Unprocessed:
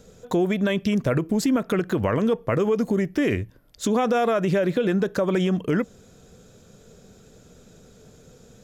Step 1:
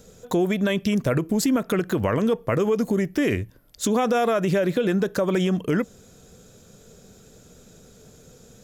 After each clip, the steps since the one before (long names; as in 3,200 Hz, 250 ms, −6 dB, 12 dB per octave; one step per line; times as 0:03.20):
high-shelf EQ 7,000 Hz +8.5 dB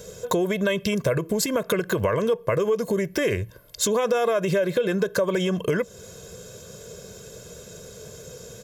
high-pass filter 120 Hz 6 dB per octave
comb filter 1.9 ms, depth 69%
downward compressor 3 to 1, threshold −30 dBFS, peak gain reduction 11.5 dB
level +7.5 dB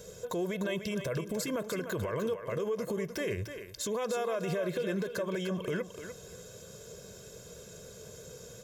brickwall limiter −18.5 dBFS, peak gain reduction 9 dB
on a send: feedback echo with a high-pass in the loop 299 ms, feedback 18%, high-pass 300 Hz, level −8 dB
on the sum: level −7 dB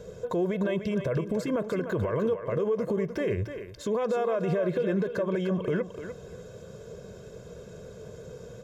low-pass filter 1,100 Hz 6 dB per octave
level +6.5 dB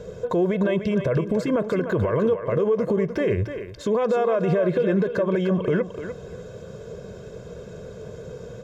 high-shelf EQ 7,300 Hz −10 dB
level +6 dB